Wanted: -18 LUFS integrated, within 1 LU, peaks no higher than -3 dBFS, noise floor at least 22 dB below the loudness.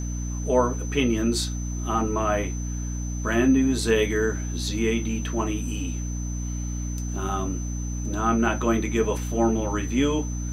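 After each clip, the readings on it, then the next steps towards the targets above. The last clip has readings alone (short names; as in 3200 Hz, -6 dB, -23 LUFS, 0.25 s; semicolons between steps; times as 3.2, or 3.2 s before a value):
hum 60 Hz; harmonics up to 300 Hz; hum level -27 dBFS; steady tone 6100 Hz; tone level -39 dBFS; loudness -25.5 LUFS; peak -7.5 dBFS; loudness target -18.0 LUFS
-> notches 60/120/180/240/300 Hz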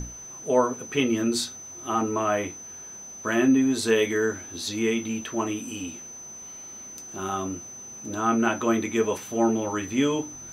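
hum none; steady tone 6100 Hz; tone level -39 dBFS
-> notch 6100 Hz, Q 30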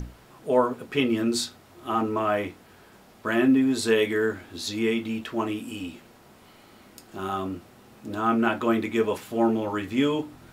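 steady tone none; loudness -26.0 LUFS; peak -8.0 dBFS; loudness target -18.0 LUFS
-> gain +8 dB; limiter -3 dBFS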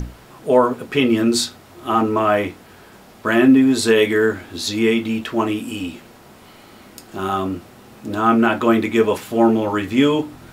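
loudness -18.0 LUFS; peak -3.0 dBFS; noise floor -45 dBFS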